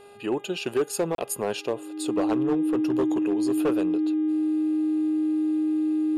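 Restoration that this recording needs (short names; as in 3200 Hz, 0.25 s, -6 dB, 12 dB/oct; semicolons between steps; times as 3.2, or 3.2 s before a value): clip repair -18 dBFS; de-hum 405.9 Hz, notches 9; notch 310 Hz, Q 30; interpolate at 1.15, 32 ms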